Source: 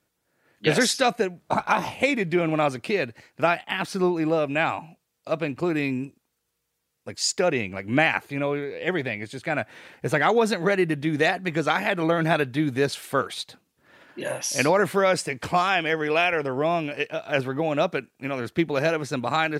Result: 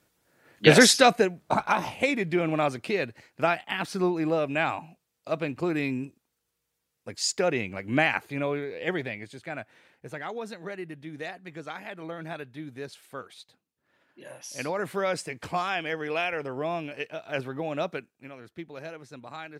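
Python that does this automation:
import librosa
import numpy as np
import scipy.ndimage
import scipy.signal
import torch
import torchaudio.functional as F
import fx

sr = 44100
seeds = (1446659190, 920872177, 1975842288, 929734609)

y = fx.gain(x, sr, db=fx.line((0.84, 5.0), (1.77, -3.0), (8.85, -3.0), (10.07, -15.5), (14.27, -15.5), (15.04, -7.0), (17.96, -7.0), (18.39, -17.0)))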